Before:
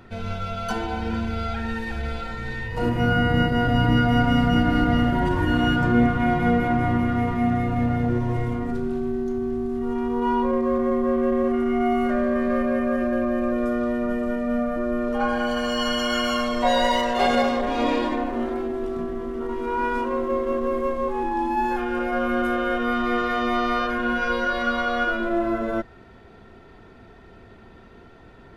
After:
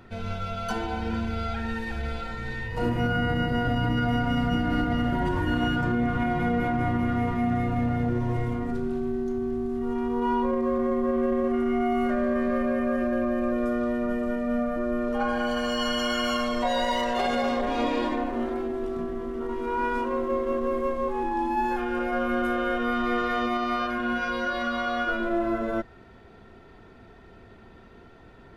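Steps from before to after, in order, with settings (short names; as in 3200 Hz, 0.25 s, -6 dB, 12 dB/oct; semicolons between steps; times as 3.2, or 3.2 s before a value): limiter -14 dBFS, peak gain reduction 7 dB; 23.46–25.09 notch comb 460 Hz; gain -2.5 dB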